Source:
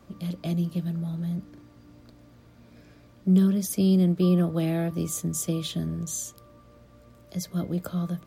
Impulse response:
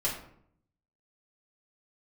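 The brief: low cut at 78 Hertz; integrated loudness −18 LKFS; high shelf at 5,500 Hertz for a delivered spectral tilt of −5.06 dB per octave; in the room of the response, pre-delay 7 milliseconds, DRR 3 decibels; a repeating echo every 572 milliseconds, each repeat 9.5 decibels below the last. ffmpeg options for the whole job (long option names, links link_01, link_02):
-filter_complex "[0:a]highpass=78,highshelf=frequency=5500:gain=6,aecho=1:1:572|1144|1716|2288:0.335|0.111|0.0365|0.012,asplit=2[link_01][link_02];[1:a]atrim=start_sample=2205,adelay=7[link_03];[link_02][link_03]afir=irnorm=-1:irlink=0,volume=-9.5dB[link_04];[link_01][link_04]amix=inputs=2:normalize=0,volume=8dB"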